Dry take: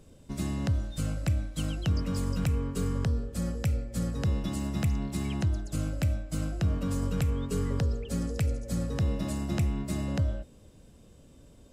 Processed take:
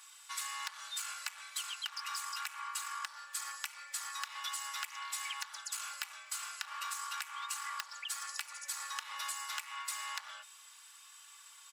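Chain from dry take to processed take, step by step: overloaded stage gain 27 dB; steep high-pass 1000 Hz 48 dB/oct; comb 3.5 ms, depth 76%; compressor, threshold -47 dBFS, peak gain reduction 11.5 dB; gain +10 dB

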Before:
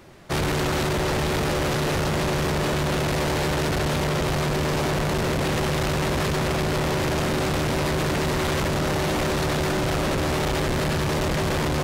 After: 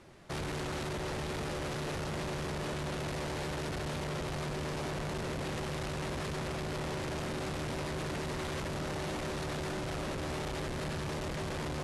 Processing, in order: steep low-pass 12000 Hz 72 dB/oct; limiter -24.5 dBFS, peak gain reduction 7.5 dB; gain -8 dB

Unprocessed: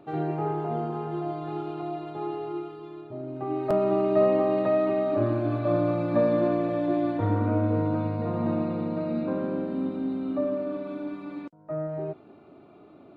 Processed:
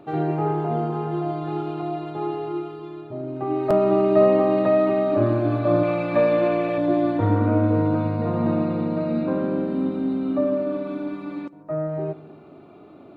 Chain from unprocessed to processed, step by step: 5.83–6.78 fifteen-band EQ 100 Hz -9 dB, 250 Hz -8 dB, 2500 Hz +10 dB; on a send: darkening echo 0.148 s, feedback 51%, low-pass 2000 Hz, level -19 dB; on the sum: gain +5 dB

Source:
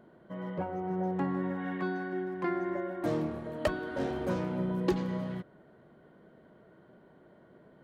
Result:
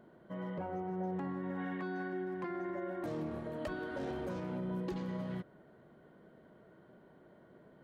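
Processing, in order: limiter -29.5 dBFS, peak gain reduction 11 dB; gain -2 dB

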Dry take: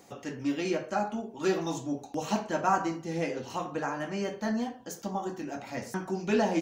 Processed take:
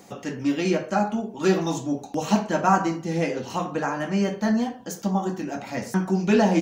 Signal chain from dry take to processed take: bell 190 Hz +8 dB 0.28 oct; gain +6 dB

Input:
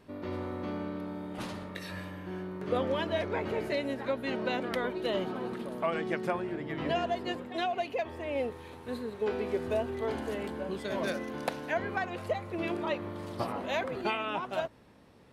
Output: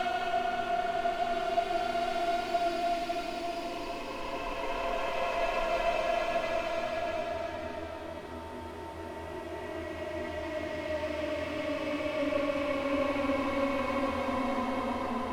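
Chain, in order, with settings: minimum comb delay 3.1 ms; Paulstretch 20×, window 0.25 s, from 7.7; gain +2.5 dB

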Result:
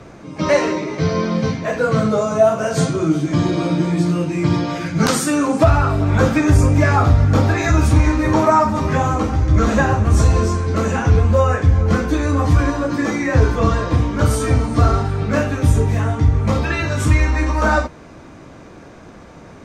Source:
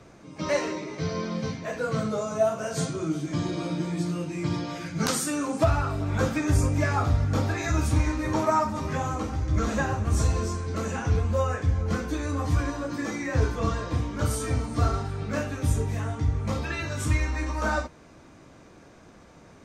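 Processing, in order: high shelf 3900 Hz -6.5 dB; in parallel at 0 dB: limiter -17.5 dBFS, peak gain reduction 7.5 dB; on the sum: gain +5.5 dB

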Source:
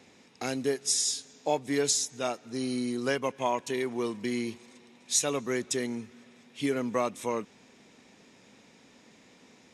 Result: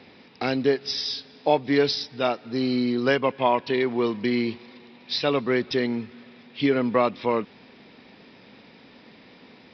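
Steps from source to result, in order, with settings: downsampling 11025 Hz; gain +7.5 dB

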